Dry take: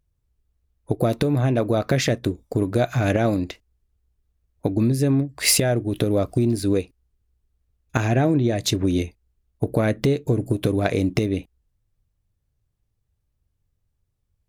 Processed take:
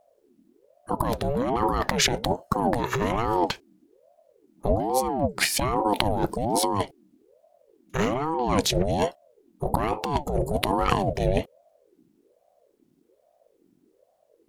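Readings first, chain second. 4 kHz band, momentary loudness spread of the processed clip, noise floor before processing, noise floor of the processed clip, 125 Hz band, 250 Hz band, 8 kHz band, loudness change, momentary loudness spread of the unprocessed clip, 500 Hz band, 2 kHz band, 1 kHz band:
0.0 dB, 6 LU, -74 dBFS, -67 dBFS, -8.5 dB, -6.5 dB, -3.5 dB, -3.5 dB, 7 LU, -3.0 dB, -1.5 dB, +7.5 dB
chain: negative-ratio compressor -26 dBFS, ratio -1; ring modulator with a swept carrier 450 Hz, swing 45%, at 1.2 Hz; gain +5 dB

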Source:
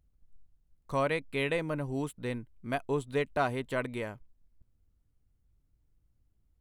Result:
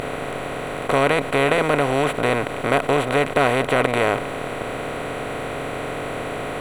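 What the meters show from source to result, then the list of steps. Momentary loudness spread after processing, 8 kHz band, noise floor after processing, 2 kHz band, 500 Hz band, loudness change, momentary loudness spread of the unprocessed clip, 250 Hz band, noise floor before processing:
10 LU, +17.0 dB, -29 dBFS, +15.0 dB, +14.0 dB, +11.5 dB, 8 LU, +12.0 dB, -73 dBFS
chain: per-bin compression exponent 0.2; ending taper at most 280 dB/s; gain +5.5 dB

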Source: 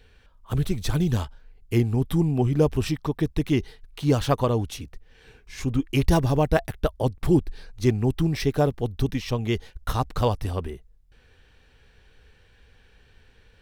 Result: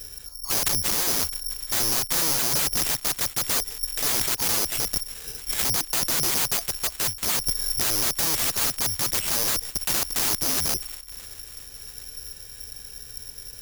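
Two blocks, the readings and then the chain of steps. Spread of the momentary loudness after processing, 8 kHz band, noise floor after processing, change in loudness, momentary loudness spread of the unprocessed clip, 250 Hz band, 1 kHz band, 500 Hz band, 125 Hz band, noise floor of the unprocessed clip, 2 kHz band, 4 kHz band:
16 LU, +20.0 dB, -43 dBFS, +2.5 dB, 10 LU, -14.0 dB, -2.5 dB, -11.0 dB, -16.0 dB, -57 dBFS, +5.0 dB, +11.5 dB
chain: high shelf 2200 Hz -5.5 dB; compressor 4:1, threshold -31 dBFS, peak gain reduction 14.5 dB; wrapped overs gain 33.5 dB; on a send: thin delay 0.661 s, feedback 45%, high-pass 1800 Hz, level -16.5 dB; on the sum: careless resampling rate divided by 8×, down none, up zero stuff; gain +6 dB

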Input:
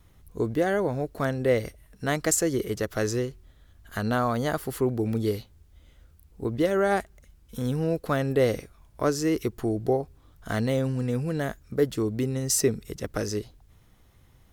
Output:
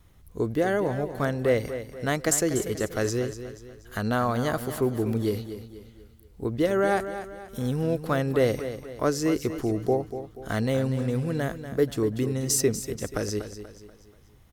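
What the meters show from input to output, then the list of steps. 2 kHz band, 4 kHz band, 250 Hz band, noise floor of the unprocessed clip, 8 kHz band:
+0.5 dB, +0.5 dB, +0.5 dB, -58 dBFS, +0.5 dB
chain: feedback echo 0.241 s, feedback 42%, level -11 dB

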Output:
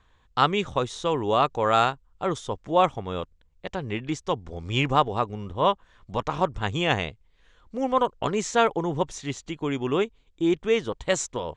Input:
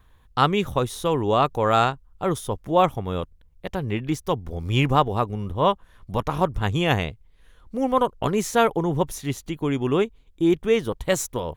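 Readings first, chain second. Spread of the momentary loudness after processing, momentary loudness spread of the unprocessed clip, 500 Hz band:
11 LU, 10 LU, -2.5 dB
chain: elliptic low-pass 7700 Hz, stop band 70 dB; low shelf 250 Hz -6.5 dB

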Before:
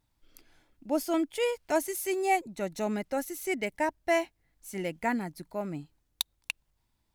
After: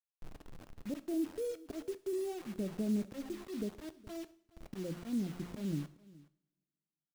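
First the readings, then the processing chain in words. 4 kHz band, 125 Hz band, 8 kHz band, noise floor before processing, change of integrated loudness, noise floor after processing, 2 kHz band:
-15.0 dB, +1.0 dB, -14.5 dB, -76 dBFS, -8.0 dB, under -85 dBFS, -21.5 dB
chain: de-hum 87.96 Hz, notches 5; auto swell 0.18 s; compressor 2:1, threshold -56 dBFS, peak gain reduction 18.5 dB; Gaussian blur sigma 21 samples; bit-crush 11-bit; on a send: echo 0.419 s -21.5 dB; on the sum: two-slope reverb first 0.58 s, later 2.3 s, from -27 dB, DRR 13.5 dB; gain +15.5 dB

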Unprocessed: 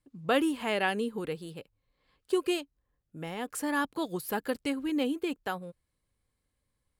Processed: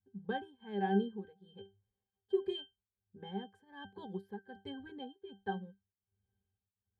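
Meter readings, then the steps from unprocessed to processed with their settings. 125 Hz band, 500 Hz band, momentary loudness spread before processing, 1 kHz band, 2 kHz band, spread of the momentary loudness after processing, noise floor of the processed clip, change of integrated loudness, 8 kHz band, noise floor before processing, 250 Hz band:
-1.0 dB, -7.5 dB, 12 LU, -7.0 dB, -14.0 dB, 20 LU, under -85 dBFS, -8.0 dB, under -35 dB, -81 dBFS, -8.5 dB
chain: octave resonator G, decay 0.21 s; tremolo triangle 1.3 Hz, depth 95%; gain +10.5 dB

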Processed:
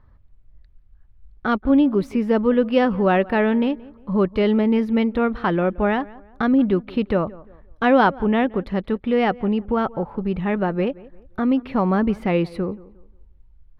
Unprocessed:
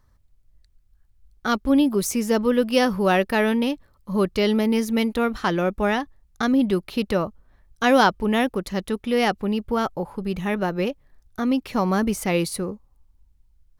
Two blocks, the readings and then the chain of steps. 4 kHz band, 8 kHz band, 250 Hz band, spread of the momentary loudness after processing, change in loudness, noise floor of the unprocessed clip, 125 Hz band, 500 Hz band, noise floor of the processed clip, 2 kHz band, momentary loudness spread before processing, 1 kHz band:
-6.0 dB, under -20 dB, +2.5 dB, 8 LU, +2.0 dB, -61 dBFS, +3.0 dB, +2.0 dB, -52 dBFS, -0.5 dB, 9 LU, +1.0 dB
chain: air absorption 430 m; tape echo 0.175 s, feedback 28%, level -21 dB, low-pass 1900 Hz; in parallel at 0 dB: compressor, threshold -38 dBFS, peak gain reduction 22.5 dB; on the sum: gain +2 dB

